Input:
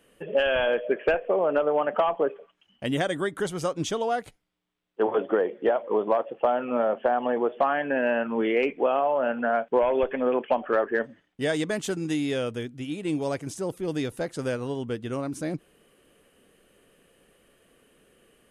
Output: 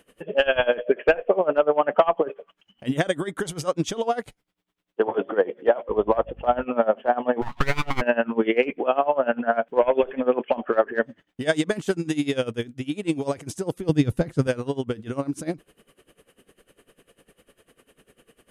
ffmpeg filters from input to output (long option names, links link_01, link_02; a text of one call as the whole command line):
ffmpeg -i in.wav -filter_complex "[0:a]asettb=1/sr,asplit=3[link_01][link_02][link_03];[link_01]atrim=end=5.894[link_04];[link_02]atrim=start=5.89:end=6.65,asetpts=PTS-STARTPTS,afade=type=in:duration=0.004:curve=qsin,afade=type=out:start_time=0.756:duration=0.004:curve=qsin,aeval=exprs='val(0)+0.00708*(sin(2*PI*50*n/s)+sin(2*PI*2*50*n/s)/2+sin(2*PI*3*50*n/s)/3+sin(2*PI*4*50*n/s)/4+sin(2*PI*5*50*n/s)/5)':channel_layout=same[link_05];[link_03]atrim=start=6.646[link_06];[link_04][link_05]acrossfade=duration=0.004:curve1=hsin:curve2=qsin[link_07];[link_07][link_06]acrossfade=duration=0.004:curve1=qsin:curve2=hsin,asplit=3[link_08][link_09][link_10];[link_08]afade=type=out:start_time=7.41:duration=0.02[link_11];[link_09]aeval=exprs='abs(val(0))':channel_layout=same,afade=type=in:start_time=7.41:duration=0.02,afade=type=out:start_time=8:duration=0.02[link_12];[link_10]afade=type=in:start_time=8:duration=0.02[link_13];[link_11][link_12][link_13]amix=inputs=3:normalize=0,asettb=1/sr,asplit=3[link_14][link_15][link_16];[link_14]atrim=end=13.894[link_17];[link_15]atrim=start=13.89:end=14.47,asetpts=PTS-STARTPTS,afade=type=in:duration=0.004:curve=qsin,afade=type=out:start_time=0.576:duration=0.004:curve=qsin,bass=frequency=250:gain=12,treble=frequency=4000:gain=-2[link_18];[link_16]atrim=start=14.466[link_19];[link_17][link_18]acrossfade=duration=0.004:curve1=hsin:curve2=qsin[link_20];[link_20][link_19]acrossfade=duration=0.004:curve1=qsin:curve2=hsin,aeval=exprs='val(0)*pow(10,-20*(0.5-0.5*cos(2*PI*10*n/s))/20)':channel_layout=same,volume=8dB" out.wav